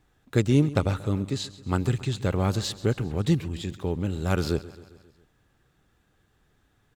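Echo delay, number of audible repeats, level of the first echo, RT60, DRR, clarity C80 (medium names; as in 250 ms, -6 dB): 134 ms, 4, -18.0 dB, no reverb, no reverb, no reverb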